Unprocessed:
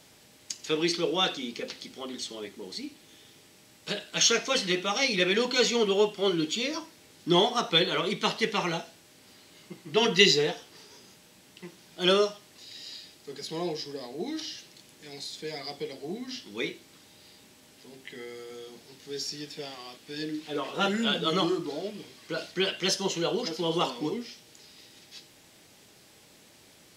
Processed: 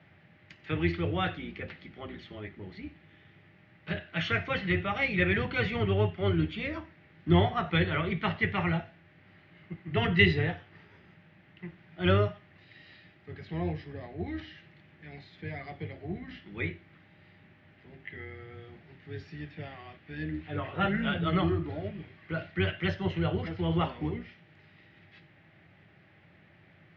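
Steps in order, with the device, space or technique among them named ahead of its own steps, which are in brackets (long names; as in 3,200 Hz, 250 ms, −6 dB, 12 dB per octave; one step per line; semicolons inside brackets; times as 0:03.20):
sub-octave bass pedal (sub-octave generator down 2 octaves, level −4 dB; loudspeaker in its box 85–2,400 Hz, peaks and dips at 96 Hz +9 dB, 160 Hz +9 dB, 250 Hz −7 dB, 460 Hz −10 dB, 980 Hz −7 dB, 1,900 Hz +5 dB)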